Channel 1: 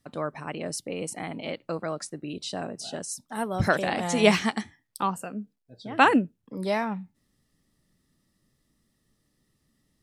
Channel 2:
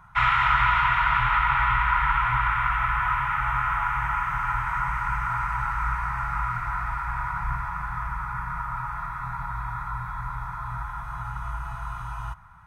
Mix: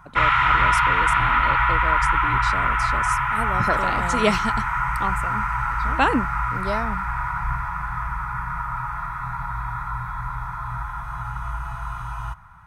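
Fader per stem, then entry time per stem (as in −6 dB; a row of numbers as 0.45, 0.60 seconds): −1.0, +3.0 decibels; 0.00, 0.00 seconds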